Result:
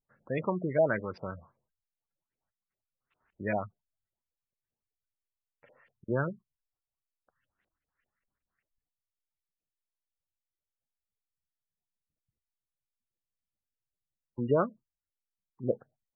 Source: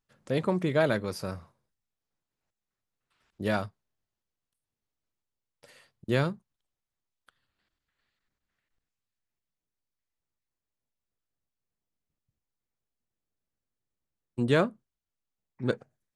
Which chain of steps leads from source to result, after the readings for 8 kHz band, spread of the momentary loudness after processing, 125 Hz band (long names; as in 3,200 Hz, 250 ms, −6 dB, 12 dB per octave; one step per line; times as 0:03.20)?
below −25 dB, 18 LU, −5.0 dB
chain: auto-filter low-pass saw up 5.1 Hz 520–2,800 Hz
gate on every frequency bin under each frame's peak −20 dB strong
level −5 dB